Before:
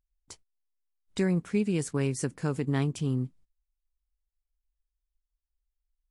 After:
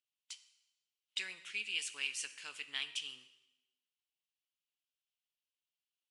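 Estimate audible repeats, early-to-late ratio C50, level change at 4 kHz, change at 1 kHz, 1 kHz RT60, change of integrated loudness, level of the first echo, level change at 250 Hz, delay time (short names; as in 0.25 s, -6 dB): none, 13.5 dB, +7.5 dB, -16.0 dB, 1.0 s, -10.0 dB, none, -39.0 dB, none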